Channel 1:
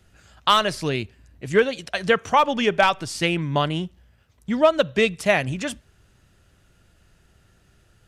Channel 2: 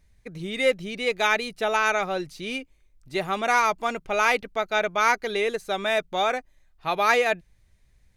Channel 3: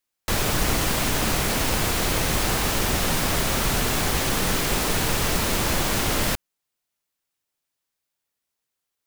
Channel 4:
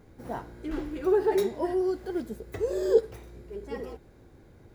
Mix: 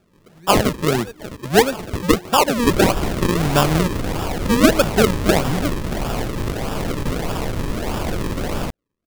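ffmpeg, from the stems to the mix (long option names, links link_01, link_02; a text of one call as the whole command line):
ffmpeg -i stem1.wav -i stem2.wav -i stem3.wav -i stem4.wav -filter_complex "[0:a]highpass=frequency=140:width=0.5412,highpass=frequency=140:width=1.3066,lowshelf=frequency=470:gain=7,dynaudnorm=framelen=280:gausssize=3:maxgain=11.5dB,volume=-1dB[link_01];[1:a]volume=-11.5dB[link_02];[2:a]acrossover=split=3100[link_03][link_04];[link_04]acompressor=threshold=-35dB:ratio=4:attack=1:release=60[link_05];[link_03][link_05]amix=inputs=2:normalize=0,adelay=2350,volume=1dB[link_06];[3:a]adelay=500,volume=-14.5dB[link_07];[link_01][link_02][link_06][link_07]amix=inputs=4:normalize=0,acrusher=samples=42:mix=1:aa=0.000001:lfo=1:lforange=42:lforate=1.6" out.wav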